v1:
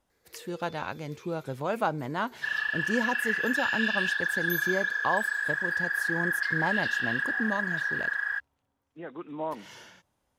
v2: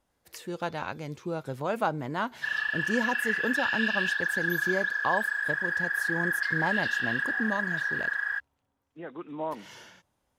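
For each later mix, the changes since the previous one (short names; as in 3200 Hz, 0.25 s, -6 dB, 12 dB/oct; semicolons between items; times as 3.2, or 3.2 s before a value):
first sound -8.5 dB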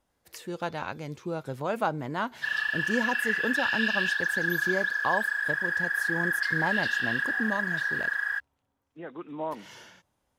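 second sound: add high shelf 5000 Hz +8.5 dB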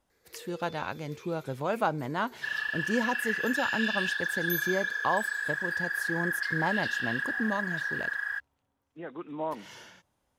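first sound +10.5 dB; second sound -3.5 dB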